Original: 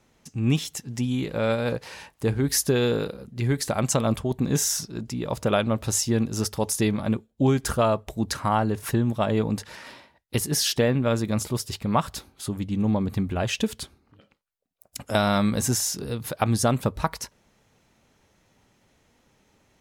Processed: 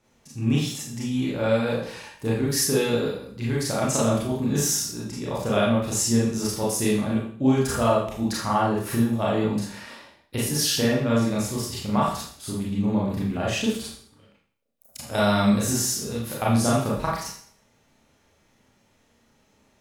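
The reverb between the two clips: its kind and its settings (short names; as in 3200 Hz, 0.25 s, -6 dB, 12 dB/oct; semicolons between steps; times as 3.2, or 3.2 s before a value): Schroeder reverb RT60 0.54 s, combs from 27 ms, DRR -6 dB; gain -6 dB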